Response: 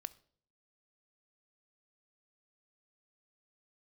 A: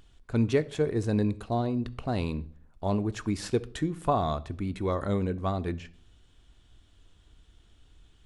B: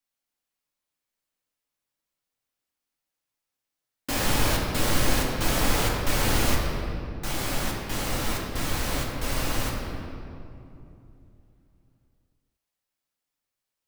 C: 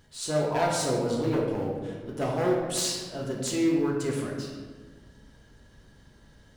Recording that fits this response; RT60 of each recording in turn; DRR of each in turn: A; 0.55 s, 2.8 s, 1.5 s; 12.5 dB, -3.0 dB, -3.0 dB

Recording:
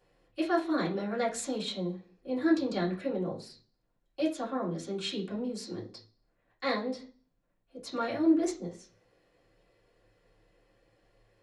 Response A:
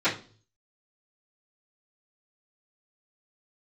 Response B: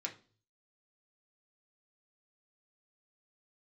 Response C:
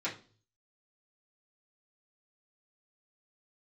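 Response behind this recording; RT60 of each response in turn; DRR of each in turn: C; 0.40 s, 0.40 s, 0.40 s; -17.5 dB, -0.5 dB, -9.0 dB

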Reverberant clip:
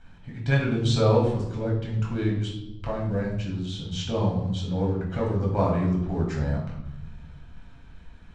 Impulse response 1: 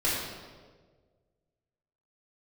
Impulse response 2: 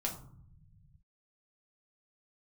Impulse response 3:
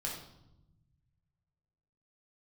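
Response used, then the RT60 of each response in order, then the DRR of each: 3; 1.6 s, 0.60 s, 0.90 s; -8.5 dB, -1.0 dB, -3.5 dB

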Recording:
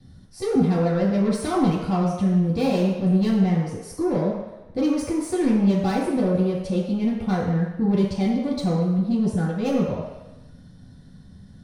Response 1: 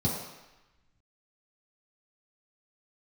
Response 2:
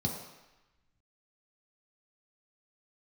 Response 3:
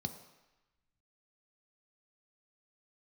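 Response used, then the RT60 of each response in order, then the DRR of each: 1; 1.0 s, 1.0 s, 1.0 s; -8.5 dB, -1.5 dB, 6.5 dB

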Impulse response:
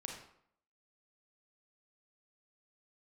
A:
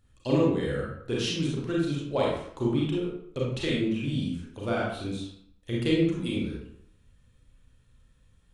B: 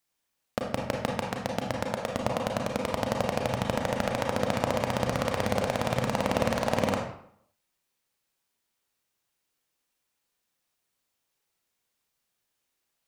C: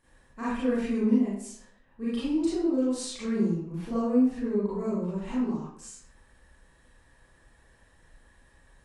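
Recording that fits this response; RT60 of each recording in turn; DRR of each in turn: B; 0.65 s, 0.65 s, 0.65 s; -5.5 dB, 0.5 dB, -11.0 dB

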